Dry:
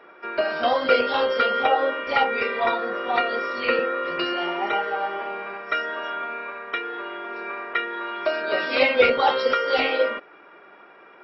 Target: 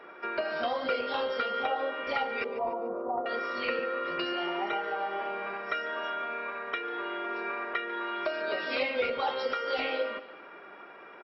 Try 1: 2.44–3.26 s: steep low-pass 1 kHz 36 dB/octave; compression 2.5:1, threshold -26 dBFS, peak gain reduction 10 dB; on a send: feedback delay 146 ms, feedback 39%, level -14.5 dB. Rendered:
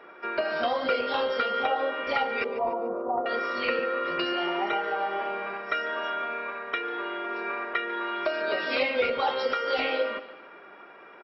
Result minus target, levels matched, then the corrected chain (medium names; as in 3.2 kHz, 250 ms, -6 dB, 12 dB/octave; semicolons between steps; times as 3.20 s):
compression: peak gain reduction -4 dB
2.44–3.26 s: steep low-pass 1 kHz 36 dB/octave; compression 2.5:1, threshold -32.5 dBFS, peak gain reduction 14 dB; on a send: feedback delay 146 ms, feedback 39%, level -14.5 dB